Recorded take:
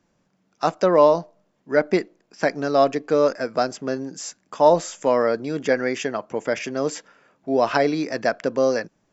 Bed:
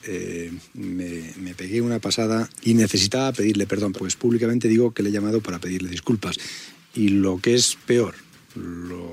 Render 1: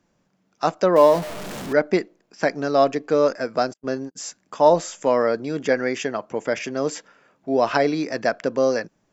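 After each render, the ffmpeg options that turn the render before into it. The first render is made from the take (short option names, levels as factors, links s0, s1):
-filter_complex "[0:a]asettb=1/sr,asplit=3[s0][s1][s2];[s0]atrim=end=0.964[s3];[s1]atrim=start=0.96:end=1.73,asetpts=PTS-STARTPTS,afade=t=in:d=0.004:c=qsin,afade=t=out:st=0.766:d=0.004:c=qsin,aeval=exprs='val(0)+0.5*0.0473*sgn(val(0))':c=same[s4];[s2]atrim=start=1.726[s5];[s3][s4]acrossfade=d=0.004:c1=hsin:c2=qsin[s6];[s6][s5]acrossfade=d=0.004:c1=qsin:c2=hsin,asplit=3[s7][s8][s9];[s7]afade=t=out:st=3.72:d=0.02[s10];[s8]agate=range=0.00708:threshold=0.0282:ratio=16:release=100:detection=peak,afade=t=in:st=3.72:d=0.02,afade=t=out:st=4.15:d=0.02[s11];[s9]afade=t=in:st=4.15:d=0.02[s12];[s10][s11][s12]amix=inputs=3:normalize=0"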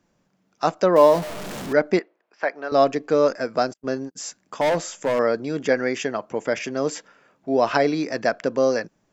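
-filter_complex "[0:a]asettb=1/sr,asplit=3[s0][s1][s2];[s0]atrim=end=1.994[s3];[s1]atrim=start=1.99:end=2.72,asetpts=PTS-STARTPTS,afade=t=in:d=0.004:c=qsin,afade=t=out:st=0.726:d=0.004:c=qsin,highpass=600,lowpass=2500[s4];[s2]atrim=start=2.716[s5];[s3][s4]acrossfade=d=0.004:c1=hsin:c2=qsin[s6];[s6][s5]acrossfade=d=0.004:c1=qsin:c2=hsin,asettb=1/sr,asplit=3[s7][s8][s9];[s7]atrim=end=4.614[s10];[s8]atrim=start=4.61:end=5.19,asetpts=PTS-STARTPTS,afade=t=in:d=0.004:c=qsin,afade=t=out:st=0.576:d=0.004:c=qsin,asoftclip=type=hard:threshold=0.141[s11];[s9]atrim=start=5.186[s12];[s10][s11]acrossfade=d=0.004:c1=hsin:c2=qsin[s13];[s13][s12]acrossfade=d=0.004:c1=qsin:c2=hsin"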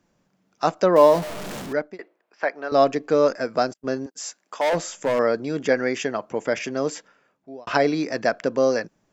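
-filter_complex "[0:a]asettb=1/sr,asplit=3[s0][s1][s2];[s0]atrim=end=4.064[s3];[s1]atrim=start=4.06:end=4.73,asetpts=PTS-STARTPTS,afade=t=in:d=0.004:c=qsin,afade=t=out:st=0.666:d=0.004:c=qsin,highpass=450[s4];[s2]atrim=start=4.726[s5];[s3][s4]acrossfade=d=0.004:c1=hsin:c2=qsin[s6];[s6][s5]acrossfade=d=0.004:c1=qsin:c2=hsin,asplit=3[s7][s8][s9];[s7]atrim=end=1.99,asetpts=PTS-STARTPTS,afade=t=out:st=1.56:d=0.43[s10];[s8]atrim=start=1.99:end=7.67,asetpts=PTS-STARTPTS,afade=t=in:d=0.004:c=hsin,afade=t=out:st=4.77:d=0.91[s11];[s9]atrim=start=7.67,asetpts=PTS-STARTPTS,afade=t=in:d=0.004:c=hsin[s12];[s10][s11][s12]concat=n=3:v=0:a=1"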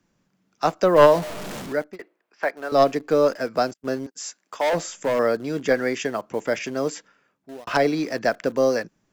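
-filter_complex "[0:a]aeval=exprs='0.668*(cos(1*acos(clip(val(0)/0.668,-1,1)))-cos(1*PI/2))+0.299*(cos(2*acos(clip(val(0)/0.668,-1,1)))-cos(2*PI/2))+0.0944*(cos(4*acos(clip(val(0)/0.668,-1,1)))-cos(4*PI/2))+0.00944*(cos(6*acos(clip(val(0)/0.668,-1,1)))-cos(6*PI/2))+0.00473*(cos(7*acos(clip(val(0)/0.668,-1,1)))-cos(7*PI/2))':c=same,acrossover=split=540|770[s0][s1][s2];[s1]acrusher=bits=7:mix=0:aa=0.000001[s3];[s0][s3][s2]amix=inputs=3:normalize=0"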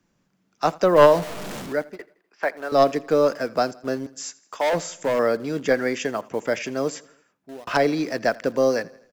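-af "aecho=1:1:83|166|249|332:0.075|0.0397|0.0211|0.0112"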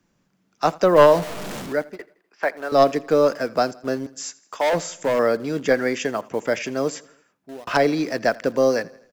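-af "volume=1.19,alimiter=limit=0.708:level=0:latency=1"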